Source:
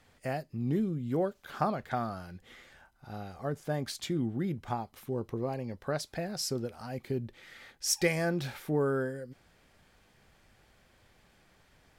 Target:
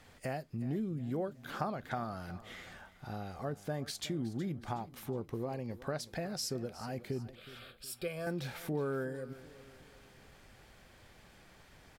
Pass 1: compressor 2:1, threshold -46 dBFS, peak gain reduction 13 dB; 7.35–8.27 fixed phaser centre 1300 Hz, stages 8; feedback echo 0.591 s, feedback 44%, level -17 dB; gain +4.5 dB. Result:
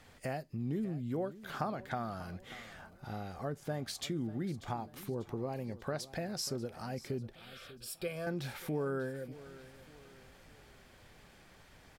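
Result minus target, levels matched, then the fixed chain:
echo 0.223 s late
compressor 2:1, threshold -46 dBFS, peak gain reduction 13 dB; 7.35–8.27 fixed phaser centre 1300 Hz, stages 8; feedback echo 0.368 s, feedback 44%, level -17 dB; gain +4.5 dB

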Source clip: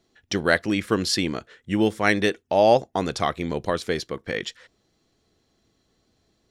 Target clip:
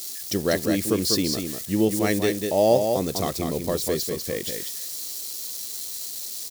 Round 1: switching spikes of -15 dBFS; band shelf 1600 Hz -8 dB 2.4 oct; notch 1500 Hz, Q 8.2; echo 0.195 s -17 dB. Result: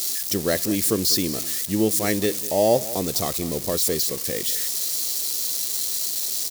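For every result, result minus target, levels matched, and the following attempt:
echo-to-direct -11.5 dB; switching spikes: distortion +8 dB
switching spikes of -15 dBFS; band shelf 1600 Hz -8 dB 2.4 oct; notch 1500 Hz, Q 8.2; echo 0.195 s -5.5 dB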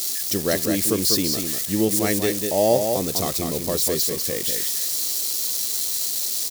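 switching spikes: distortion +8 dB
switching spikes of -23.5 dBFS; band shelf 1600 Hz -8 dB 2.4 oct; notch 1500 Hz, Q 8.2; echo 0.195 s -5.5 dB

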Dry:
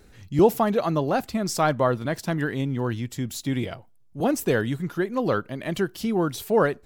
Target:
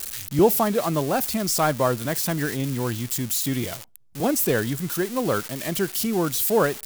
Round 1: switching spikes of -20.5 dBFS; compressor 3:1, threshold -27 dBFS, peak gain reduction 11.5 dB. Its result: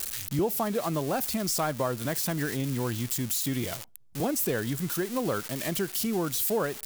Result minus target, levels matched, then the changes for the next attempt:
compressor: peak gain reduction +11.5 dB
remove: compressor 3:1, threshold -27 dBFS, peak gain reduction 11.5 dB

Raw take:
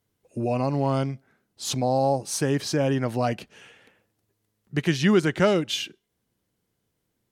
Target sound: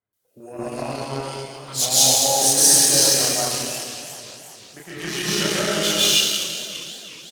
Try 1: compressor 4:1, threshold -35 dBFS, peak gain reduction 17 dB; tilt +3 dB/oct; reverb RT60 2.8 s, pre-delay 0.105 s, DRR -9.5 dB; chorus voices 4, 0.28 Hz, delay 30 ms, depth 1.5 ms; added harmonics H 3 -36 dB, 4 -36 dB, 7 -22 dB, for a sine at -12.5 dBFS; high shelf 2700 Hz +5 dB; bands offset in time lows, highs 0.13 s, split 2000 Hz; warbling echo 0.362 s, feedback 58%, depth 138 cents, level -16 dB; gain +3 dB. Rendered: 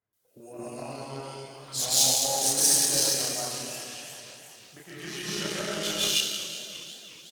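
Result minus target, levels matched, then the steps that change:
compressor: peak gain reduction +6.5 dB
change: compressor 4:1, threshold -26.5 dBFS, peak gain reduction 10.5 dB

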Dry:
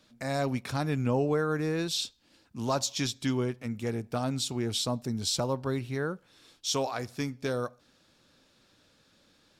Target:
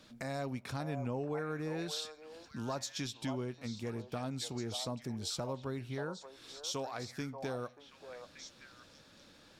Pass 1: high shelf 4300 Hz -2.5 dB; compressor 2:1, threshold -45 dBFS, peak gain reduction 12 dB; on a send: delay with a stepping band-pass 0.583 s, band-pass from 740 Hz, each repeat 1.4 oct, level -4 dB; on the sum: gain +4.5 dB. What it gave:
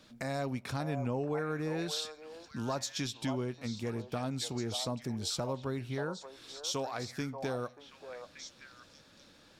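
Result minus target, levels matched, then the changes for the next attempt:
compressor: peak gain reduction -3.5 dB
change: compressor 2:1, threshold -51.5 dBFS, peak gain reduction 15.5 dB

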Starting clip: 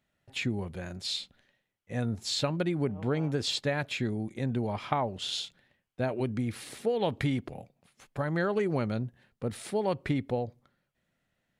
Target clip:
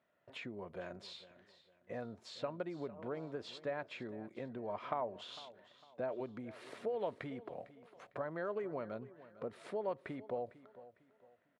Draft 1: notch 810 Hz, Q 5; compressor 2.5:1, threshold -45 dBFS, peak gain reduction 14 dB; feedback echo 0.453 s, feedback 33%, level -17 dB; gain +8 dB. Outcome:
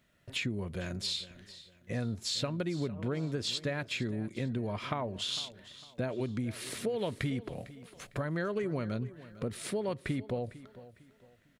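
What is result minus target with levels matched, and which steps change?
1000 Hz band -6.5 dB
add after compressor: band-pass 760 Hz, Q 1.3

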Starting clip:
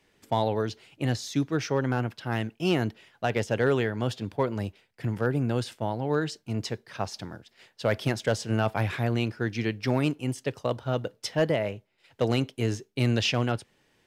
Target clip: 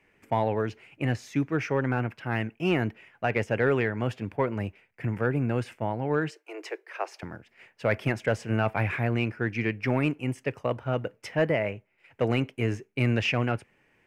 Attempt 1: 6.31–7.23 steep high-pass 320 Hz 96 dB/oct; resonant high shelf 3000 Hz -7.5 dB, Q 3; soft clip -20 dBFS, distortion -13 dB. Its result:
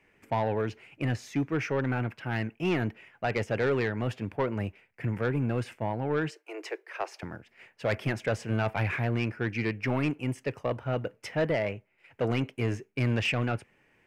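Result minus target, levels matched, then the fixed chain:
soft clip: distortion +15 dB
6.31–7.23 steep high-pass 320 Hz 96 dB/oct; resonant high shelf 3000 Hz -7.5 dB, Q 3; soft clip -9.5 dBFS, distortion -28 dB

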